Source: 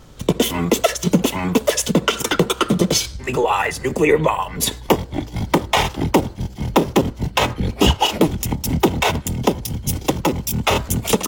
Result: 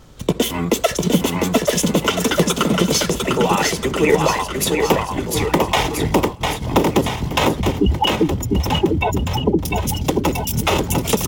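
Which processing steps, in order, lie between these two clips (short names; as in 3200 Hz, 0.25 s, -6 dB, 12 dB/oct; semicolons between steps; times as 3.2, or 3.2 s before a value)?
7.61–9.59 spectral contrast raised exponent 2.9; bouncing-ball echo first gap 0.7 s, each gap 0.9×, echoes 5; 6.15–6.63 expander -17 dBFS; gain -1 dB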